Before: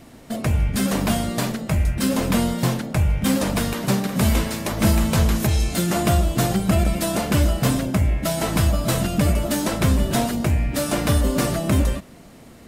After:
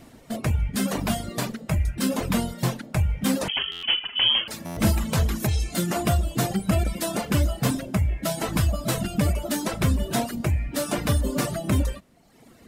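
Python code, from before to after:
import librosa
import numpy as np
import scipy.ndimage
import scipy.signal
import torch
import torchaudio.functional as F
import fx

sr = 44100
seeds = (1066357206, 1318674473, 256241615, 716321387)

y = fx.dereverb_blind(x, sr, rt60_s=1.1)
y = fx.freq_invert(y, sr, carrier_hz=3200, at=(3.48, 4.48))
y = fx.buffer_glitch(y, sr, at_s=(3.71, 4.65), block=512, repeats=9)
y = F.gain(torch.from_numpy(y), -2.5).numpy()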